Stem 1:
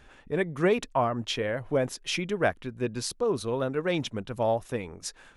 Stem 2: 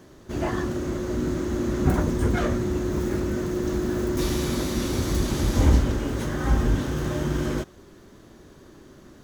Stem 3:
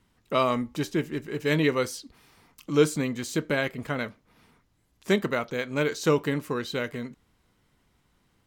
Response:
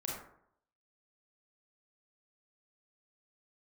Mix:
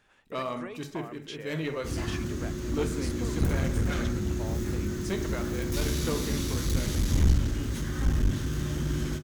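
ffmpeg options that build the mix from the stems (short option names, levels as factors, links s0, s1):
-filter_complex "[0:a]lowshelf=f=350:g=-11,acompressor=threshold=0.0282:ratio=4,volume=0.398[s0];[1:a]equalizer=f=650:t=o:w=2.1:g=-14.5,adelay=1550,volume=0.75,asplit=2[s1][s2];[s2]volume=0.376[s3];[2:a]volume=0.237,asplit=2[s4][s5];[s5]volume=0.596[s6];[3:a]atrim=start_sample=2205[s7];[s3][s6]amix=inputs=2:normalize=0[s8];[s8][s7]afir=irnorm=-1:irlink=0[s9];[s0][s1][s4][s9]amix=inputs=4:normalize=0,aeval=exprs='clip(val(0),-1,0.0562)':c=same"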